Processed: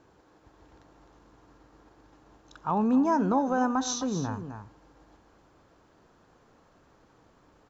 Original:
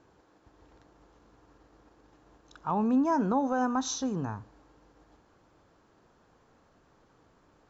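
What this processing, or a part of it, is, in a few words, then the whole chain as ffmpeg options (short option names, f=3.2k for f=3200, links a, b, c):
ducked delay: -filter_complex "[0:a]asplit=3[a][b][c];[b]adelay=259,volume=-7dB[d];[c]apad=whole_len=350907[e];[d][e]sidechaincompress=threshold=-30dB:ratio=8:attack=16:release=1060[f];[a][f]amix=inputs=2:normalize=0,volume=2dB"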